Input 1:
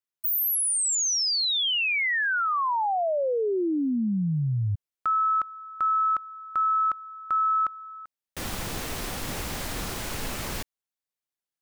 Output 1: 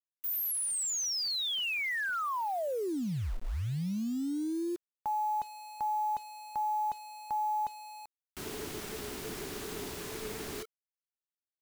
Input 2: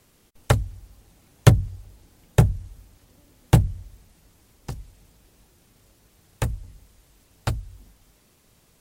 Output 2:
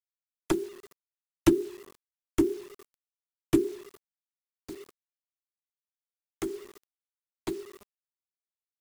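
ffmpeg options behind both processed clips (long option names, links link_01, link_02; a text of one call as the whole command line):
ffmpeg -i in.wav -af "afreqshift=-450,acrusher=bits=6:mix=0:aa=0.000001,volume=-8dB" out.wav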